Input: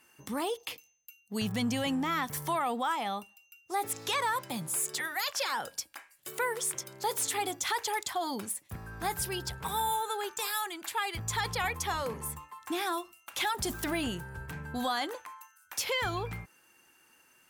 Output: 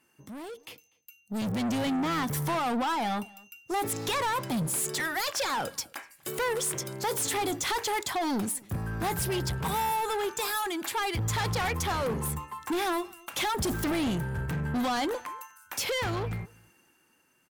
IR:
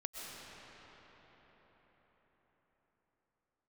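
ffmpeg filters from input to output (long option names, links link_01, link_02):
-filter_complex "[0:a]equalizer=frequency=170:width=0.37:gain=8,asoftclip=type=tanh:threshold=-32.5dB,dynaudnorm=framelen=150:gausssize=17:maxgain=13dB,asplit=2[link_01][link_02];[link_02]adelay=244.9,volume=-25dB,highshelf=frequency=4000:gain=-5.51[link_03];[link_01][link_03]amix=inputs=2:normalize=0,volume=-6.5dB" -ar 48000 -c:a libvorbis -b:a 192k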